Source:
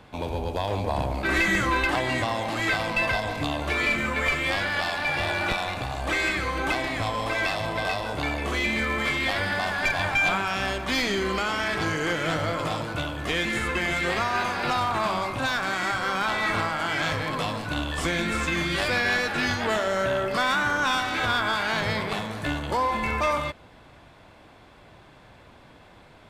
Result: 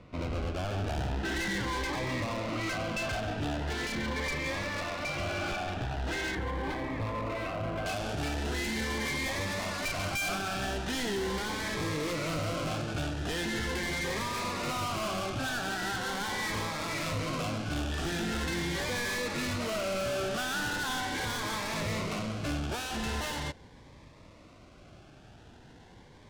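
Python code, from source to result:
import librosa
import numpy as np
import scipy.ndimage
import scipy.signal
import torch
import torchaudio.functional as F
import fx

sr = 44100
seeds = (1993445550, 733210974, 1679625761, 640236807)

y = fx.halfwave_hold(x, sr)
y = fx.lowpass(y, sr, hz=fx.steps((0.0, 3100.0), (6.35, 1600.0), (7.86, 5900.0)), slope=12)
y = np.clip(y, -10.0 ** (-23.5 / 20.0), 10.0 ** (-23.5 / 20.0))
y = fx.notch_cascade(y, sr, direction='rising', hz=0.41)
y = y * 10.0 ** (-6.0 / 20.0)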